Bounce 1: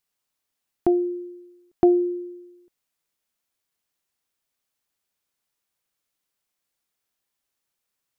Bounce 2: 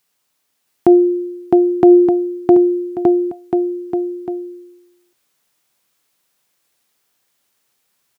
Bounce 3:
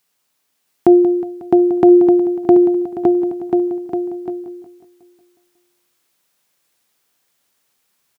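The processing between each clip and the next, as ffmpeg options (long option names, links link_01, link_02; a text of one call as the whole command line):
ffmpeg -i in.wav -af "highpass=100,aecho=1:1:660|1221|1698|2103|2448:0.631|0.398|0.251|0.158|0.1,alimiter=level_in=13dB:limit=-1dB:release=50:level=0:latency=1,volume=-1dB" out.wav
ffmpeg -i in.wav -filter_complex "[0:a]bandreject=frequency=60:width_type=h:width=6,bandreject=frequency=120:width_type=h:width=6,asplit=2[link_01][link_02];[link_02]aecho=0:1:182|364|546|728|910|1092|1274:0.237|0.14|0.0825|0.0487|0.0287|0.017|0.01[link_03];[link_01][link_03]amix=inputs=2:normalize=0" out.wav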